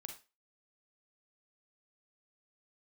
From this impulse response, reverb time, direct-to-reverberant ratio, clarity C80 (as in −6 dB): 0.30 s, 4.0 dB, 14.5 dB